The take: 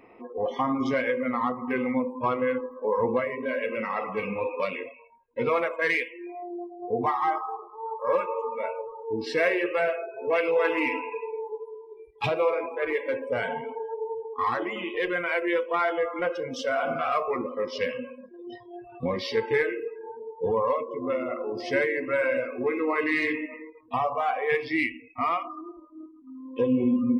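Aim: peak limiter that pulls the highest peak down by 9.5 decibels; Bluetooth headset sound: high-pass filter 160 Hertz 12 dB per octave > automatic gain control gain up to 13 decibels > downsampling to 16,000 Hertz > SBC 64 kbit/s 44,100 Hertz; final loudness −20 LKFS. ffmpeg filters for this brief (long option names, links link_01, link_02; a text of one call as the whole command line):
ffmpeg -i in.wav -af "alimiter=limit=-21dB:level=0:latency=1,highpass=160,dynaudnorm=maxgain=13dB,aresample=16000,aresample=44100,volume=2dB" -ar 44100 -c:a sbc -b:a 64k out.sbc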